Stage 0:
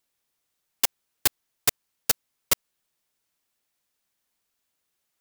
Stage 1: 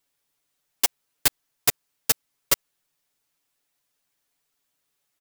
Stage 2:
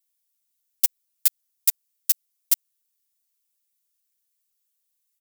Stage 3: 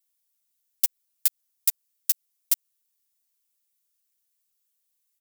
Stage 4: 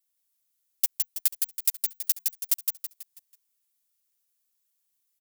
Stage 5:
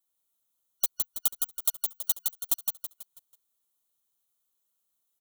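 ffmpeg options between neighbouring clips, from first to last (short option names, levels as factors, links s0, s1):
-af "aecho=1:1:7:0.72"
-af "aderivative,volume=0.794"
-af "acompressor=threshold=0.141:ratio=6"
-filter_complex "[0:a]asplit=6[s0][s1][s2][s3][s4][s5];[s1]adelay=163,afreqshift=-59,volume=0.668[s6];[s2]adelay=326,afreqshift=-118,volume=0.266[s7];[s3]adelay=489,afreqshift=-177,volume=0.107[s8];[s4]adelay=652,afreqshift=-236,volume=0.0427[s9];[s5]adelay=815,afreqshift=-295,volume=0.0172[s10];[s0][s6][s7][s8][s9][s10]amix=inputs=6:normalize=0,volume=0.794"
-af "afftfilt=real='real(if(lt(b,272),68*(eq(floor(b/68),0)*2+eq(floor(b/68),1)*0+eq(floor(b/68),2)*3+eq(floor(b/68),3)*1)+mod(b,68),b),0)':imag='imag(if(lt(b,272),68*(eq(floor(b/68),0)*2+eq(floor(b/68),1)*0+eq(floor(b/68),2)*3+eq(floor(b/68),3)*1)+mod(b,68),b),0)':win_size=2048:overlap=0.75,volume=0.794"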